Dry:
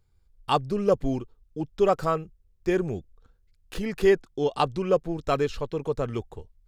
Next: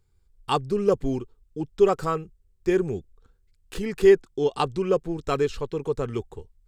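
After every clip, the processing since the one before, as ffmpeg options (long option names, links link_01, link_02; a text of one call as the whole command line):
ffmpeg -i in.wav -af "equalizer=frequency=400:width_type=o:width=0.33:gain=5,equalizer=frequency=630:width_type=o:width=0.33:gain=-7,equalizer=frequency=8000:width_type=o:width=0.33:gain=6" out.wav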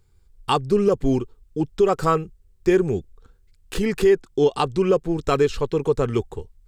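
ffmpeg -i in.wav -af "alimiter=limit=-15.5dB:level=0:latency=1:release=234,volume=7dB" out.wav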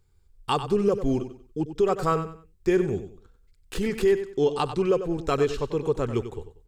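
ffmpeg -i in.wav -af "aecho=1:1:94|188|282:0.282|0.0789|0.0221,volume=-4.5dB" out.wav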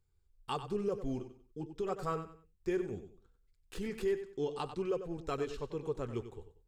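ffmpeg -i in.wav -af "flanger=delay=1.1:depth=9:regen=-70:speed=0.39:shape=triangular,volume=-8dB" out.wav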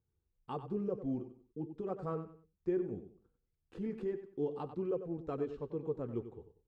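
ffmpeg -i in.wav -af "bandpass=frequency=270:width_type=q:width=0.65:csg=0,bandreject=frequency=400:width=12,volume=2dB" out.wav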